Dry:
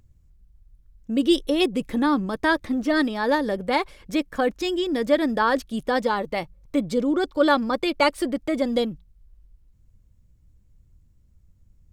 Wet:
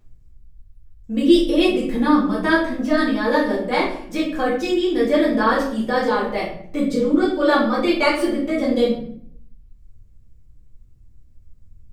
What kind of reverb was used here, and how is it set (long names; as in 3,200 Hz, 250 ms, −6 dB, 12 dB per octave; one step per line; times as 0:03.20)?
rectangular room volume 96 cubic metres, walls mixed, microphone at 2 metres
level −5.5 dB